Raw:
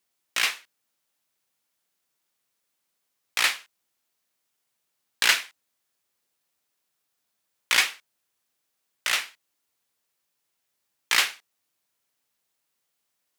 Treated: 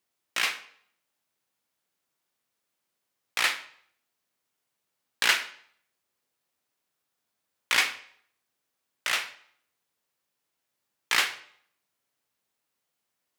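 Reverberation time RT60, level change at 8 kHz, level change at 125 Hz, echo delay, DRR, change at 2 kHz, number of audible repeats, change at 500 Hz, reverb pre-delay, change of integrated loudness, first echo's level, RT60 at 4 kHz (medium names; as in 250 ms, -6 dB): 0.60 s, -4.5 dB, no reading, no echo, 10.0 dB, -2.0 dB, no echo, 0.0 dB, 14 ms, -2.5 dB, no echo, 0.55 s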